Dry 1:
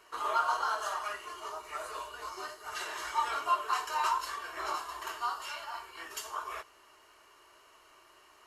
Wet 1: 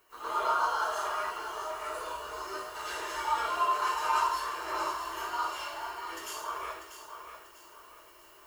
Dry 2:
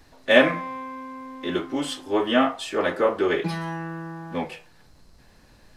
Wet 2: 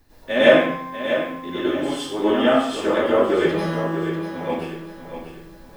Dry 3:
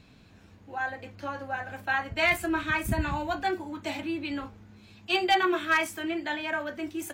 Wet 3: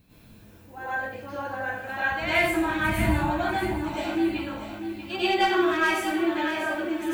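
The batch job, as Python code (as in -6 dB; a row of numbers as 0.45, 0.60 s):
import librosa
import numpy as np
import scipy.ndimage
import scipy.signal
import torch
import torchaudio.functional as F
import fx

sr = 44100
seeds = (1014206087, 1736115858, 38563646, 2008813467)

p1 = fx.dmg_noise_colour(x, sr, seeds[0], colour='violet', level_db=-63.0)
p2 = fx.low_shelf(p1, sr, hz=480.0, db=6.0)
p3 = p2 + fx.echo_feedback(p2, sr, ms=642, feedback_pct=37, wet_db=-9.5, dry=0)
p4 = fx.rev_plate(p3, sr, seeds[1], rt60_s=0.6, hf_ratio=1.0, predelay_ms=85, drr_db=-10.0)
y = p4 * 10.0 ** (-9.5 / 20.0)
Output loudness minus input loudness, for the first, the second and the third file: +2.5, +3.5, +3.0 LU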